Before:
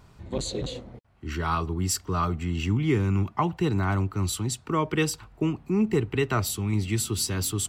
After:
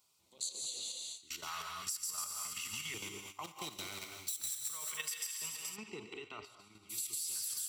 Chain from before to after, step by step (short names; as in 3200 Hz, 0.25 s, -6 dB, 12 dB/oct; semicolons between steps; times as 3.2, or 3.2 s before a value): 3.44–4.63 minimum comb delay 0.53 ms; differentiator; thin delay 0.142 s, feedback 62%, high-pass 1800 Hz, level -3.5 dB; level quantiser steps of 12 dB; non-linear reverb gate 0.25 s rising, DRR 4.5 dB; compressor 6:1, threshold -47 dBFS, peak gain reduction 14.5 dB; LFO notch square 0.34 Hz 330–1700 Hz; gate -56 dBFS, range -11 dB; 5.75–6.89 LPF 3400 Hz -> 1500 Hz 12 dB/oct; gain +9.5 dB